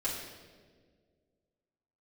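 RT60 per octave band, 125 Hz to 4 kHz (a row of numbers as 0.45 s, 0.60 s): 2.2 s, 2.3 s, 2.1 s, 1.3 s, 1.2 s, 1.2 s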